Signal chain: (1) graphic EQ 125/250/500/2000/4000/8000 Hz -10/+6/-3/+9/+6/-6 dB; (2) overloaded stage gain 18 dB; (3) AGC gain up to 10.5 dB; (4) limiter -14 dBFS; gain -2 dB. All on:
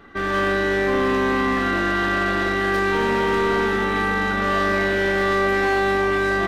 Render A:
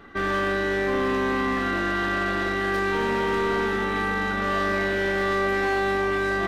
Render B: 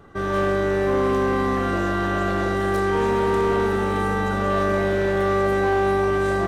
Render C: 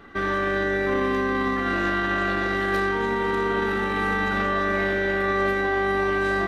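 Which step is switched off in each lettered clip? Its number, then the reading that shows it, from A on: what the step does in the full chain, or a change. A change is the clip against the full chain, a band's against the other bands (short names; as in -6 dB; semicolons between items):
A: 3, loudness change -4.0 LU; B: 1, loudness change -1.5 LU; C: 2, distortion -15 dB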